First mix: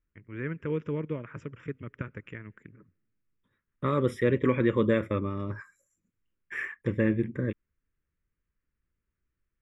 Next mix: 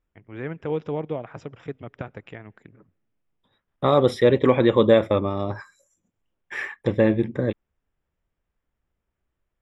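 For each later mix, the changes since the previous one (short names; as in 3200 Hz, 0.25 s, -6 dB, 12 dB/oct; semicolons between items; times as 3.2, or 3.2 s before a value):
second voice +3.5 dB; master: remove fixed phaser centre 1800 Hz, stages 4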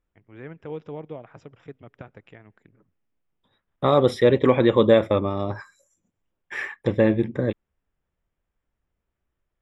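first voice -7.5 dB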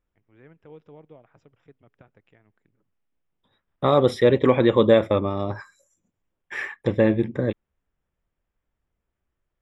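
first voice -11.5 dB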